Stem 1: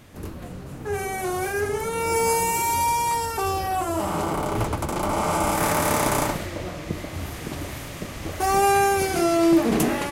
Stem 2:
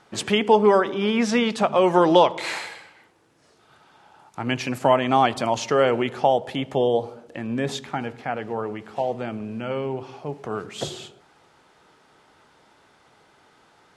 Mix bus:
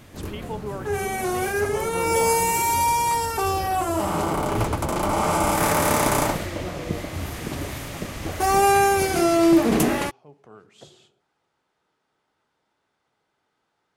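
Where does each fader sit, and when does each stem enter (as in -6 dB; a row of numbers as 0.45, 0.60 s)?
+1.5, -17.5 dB; 0.00, 0.00 s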